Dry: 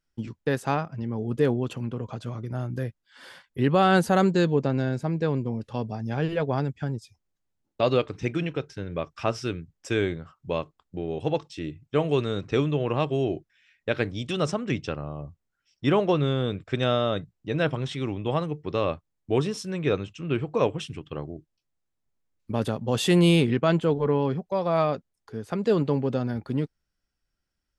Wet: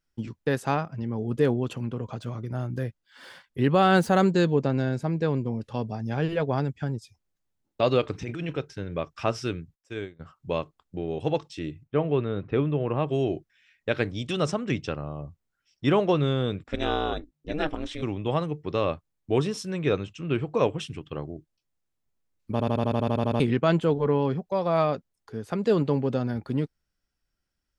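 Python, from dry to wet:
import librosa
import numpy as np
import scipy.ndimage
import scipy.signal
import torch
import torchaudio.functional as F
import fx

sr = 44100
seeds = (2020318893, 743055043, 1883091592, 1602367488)

y = fx.median_filter(x, sr, points=3, at=(2.22, 4.29))
y = fx.over_compress(y, sr, threshold_db=-31.0, ratio=-1.0, at=(8.03, 8.58))
y = fx.upward_expand(y, sr, threshold_db=-33.0, expansion=2.5, at=(9.74, 10.19), fade=0.02)
y = fx.air_absorb(y, sr, metres=430.0, at=(11.83, 13.07), fade=0.02)
y = fx.ring_mod(y, sr, carrier_hz=150.0, at=(16.63, 18.01), fade=0.02)
y = fx.edit(y, sr, fx.stutter_over(start_s=22.52, slice_s=0.08, count=11), tone=tone)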